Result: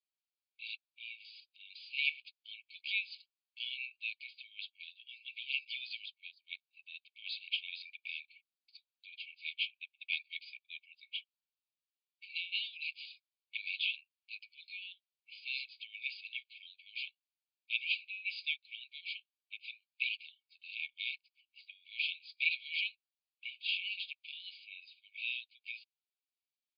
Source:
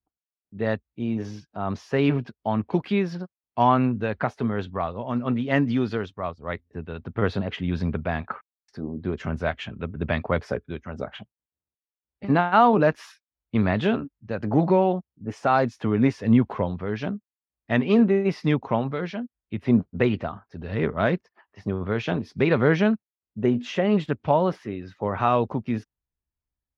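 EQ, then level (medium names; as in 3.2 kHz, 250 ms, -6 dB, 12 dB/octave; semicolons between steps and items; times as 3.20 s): brick-wall FIR band-pass 2.2–5 kHz; +2.5 dB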